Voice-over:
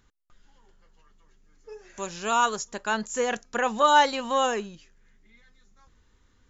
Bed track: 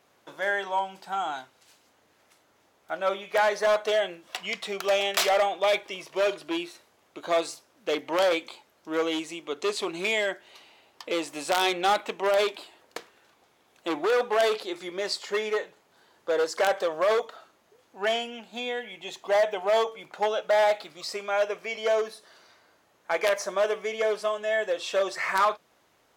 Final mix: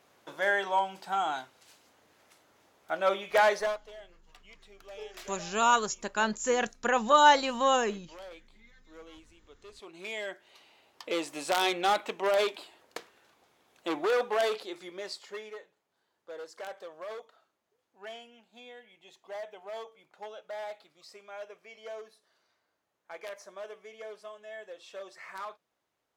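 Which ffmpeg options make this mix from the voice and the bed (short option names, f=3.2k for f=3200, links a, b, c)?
-filter_complex "[0:a]adelay=3300,volume=-1dB[a];[1:a]volume=20.5dB,afade=t=out:st=3.5:d=0.29:silence=0.0668344,afade=t=in:st=9.72:d=1.35:silence=0.0944061,afade=t=out:st=14.07:d=1.52:silence=0.188365[b];[a][b]amix=inputs=2:normalize=0"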